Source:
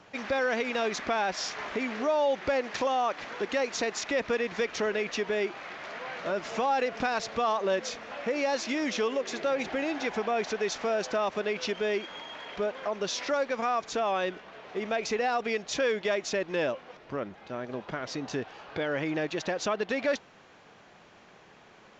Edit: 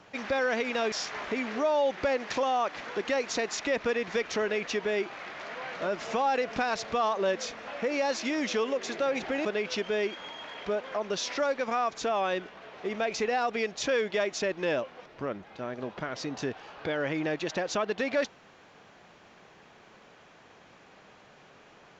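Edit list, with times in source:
0.92–1.36 s: delete
9.89–11.36 s: delete

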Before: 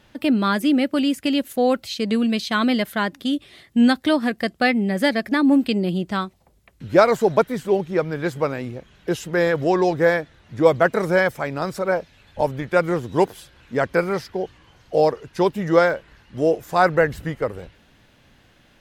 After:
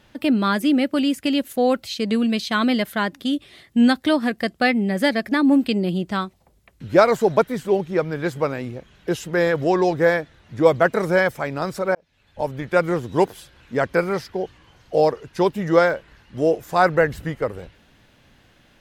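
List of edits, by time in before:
11.95–12.71 s: fade in

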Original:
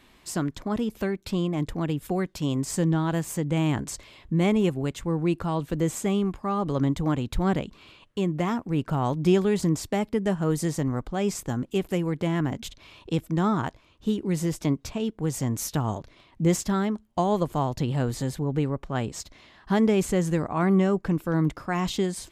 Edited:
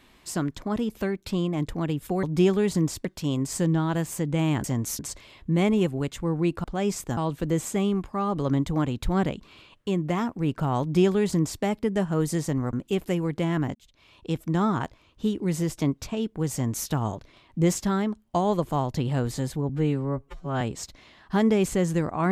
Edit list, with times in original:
9.11–9.93 s: copy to 2.23 s
11.03–11.56 s: move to 5.47 s
12.58–13.30 s: fade in
15.36–15.71 s: copy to 3.82 s
18.52–18.98 s: stretch 2×

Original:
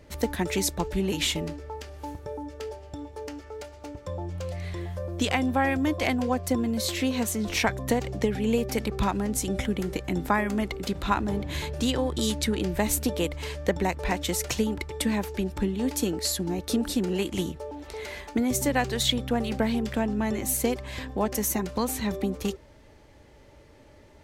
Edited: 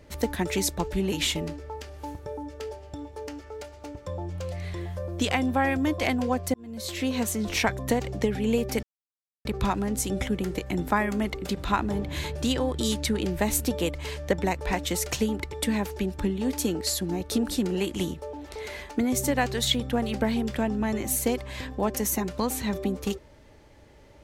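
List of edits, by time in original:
6.54–7.15 s: fade in
8.83 s: insert silence 0.62 s

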